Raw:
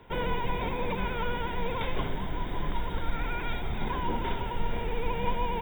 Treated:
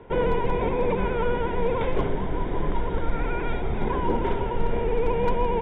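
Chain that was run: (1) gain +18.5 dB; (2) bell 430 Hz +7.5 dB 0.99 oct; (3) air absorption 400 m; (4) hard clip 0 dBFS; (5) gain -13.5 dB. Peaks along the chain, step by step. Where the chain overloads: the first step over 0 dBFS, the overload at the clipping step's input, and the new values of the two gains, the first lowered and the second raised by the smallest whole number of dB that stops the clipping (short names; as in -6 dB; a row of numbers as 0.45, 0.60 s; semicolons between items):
+4.0, +5.0, +4.0, 0.0, -13.5 dBFS; step 1, 4.0 dB; step 1 +14.5 dB, step 5 -9.5 dB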